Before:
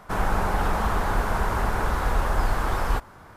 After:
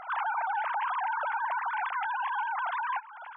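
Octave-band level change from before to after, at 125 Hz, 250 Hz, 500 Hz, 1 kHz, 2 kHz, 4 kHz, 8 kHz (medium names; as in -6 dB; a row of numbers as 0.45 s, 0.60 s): under -40 dB, under -40 dB, -16.0 dB, -1.5 dB, -1.5 dB, -9.5 dB, under -40 dB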